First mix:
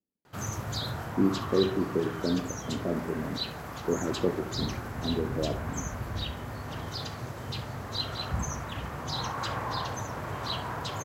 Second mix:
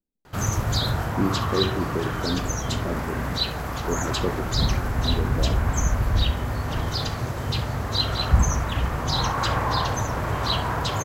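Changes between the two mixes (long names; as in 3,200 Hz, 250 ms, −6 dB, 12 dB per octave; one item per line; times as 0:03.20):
background +8.5 dB
master: remove high-pass filter 95 Hz 12 dB per octave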